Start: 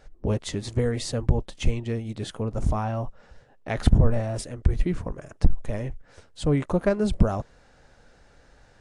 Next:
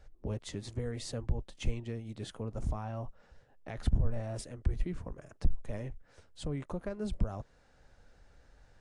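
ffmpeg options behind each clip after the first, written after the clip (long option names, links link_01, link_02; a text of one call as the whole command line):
ffmpeg -i in.wav -filter_complex "[0:a]acrossover=split=100[link_01][link_02];[link_01]acompressor=mode=upward:threshold=-41dB:ratio=2.5[link_03];[link_02]alimiter=limit=-19.5dB:level=0:latency=1:release=316[link_04];[link_03][link_04]amix=inputs=2:normalize=0,volume=-9dB" out.wav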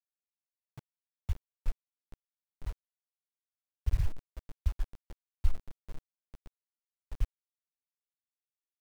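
ffmpeg -i in.wav -af "aecho=1:1:436|872|1308|1744|2180:0.299|0.149|0.0746|0.0373|0.0187,afftfilt=real='re*gte(hypot(re,im),0.355)':imag='im*gte(hypot(re,im),0.355)':win_size=1024:overlap=0.75,acrusher=bits=7:mix=0:aa=0.000001,volume=1dB" out.wav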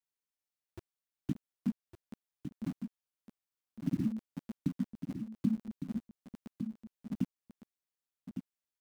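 ffmpeg -i in.wav -af "acompressor=threshold=-33dB:ratio=2,aeval=exprs='val(0)*sin(2*PI*220*n/s)':channel_layout=same,aecho=1:1:1158:0.398,volume=3dB" out.wav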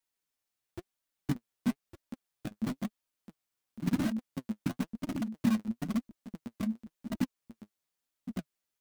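ffmpeg -i in.wav -filter_complex "[0:a]asplit=2[link_01][link_02];[link_02]aeval=exprs='(mod(39.8*val(0)+1,2)-1)/39.8':channel_layout=same,volume=-5dB[link_03];[link_01][link_03]amix=inputs=2:normalize=0,flanger=delay=3.1:depth=6.5:regen=41:speed=0.98:shape=sinusoidal,volume=6dB" out.wav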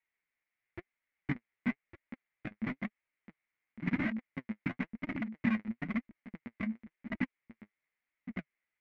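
ffmpeg -i in.wav -af "lowpass=frequency=2100:width_type=q:width=6.9,volume=-3.5dB" out.wav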